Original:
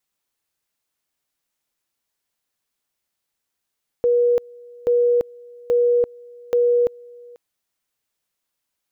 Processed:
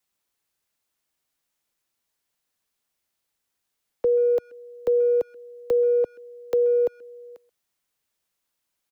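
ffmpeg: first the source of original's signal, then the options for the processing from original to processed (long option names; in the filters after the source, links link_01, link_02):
-f lavfi -i "aevalsrc='pow(10,(-13.5-25.5*gte(mod(t,0.83),0.34))/20)*sin(2*PI*482*t)':duration=3.32:sample_rate=44100"
-filter_complex "[0:a]acrossover=split=340|830[link_01][link_02][link_03];[link_01]acompressor=threshold=-41dB:ratio=4[link_04];[link_02]acompressor=threshold=-18dB:ratio=4[link_05];[link_03]acompressor=threshold=-43dB:ratio=4[link_06];[link_04][link_05][link_06]amix=inputs=3:normalize=0,acrossover=split=120|310|560[link_07][link_08][link_09][link_10];[link_07]acrusher=bits=2:mode=log:mix=0:aa=0.000001[link_11];[link_11][link_08][link_09][link_10]amix=inputs=4:normalize=0,asplit=2[link_12][link_13];[link_13]adelay=130,highpass=300,lowpass=3400,asoftclip=type=hard:threshold=-24.5dB,volume=-21dB[link_14];[link_12][link_14]amix=inputs=2:normalize=0"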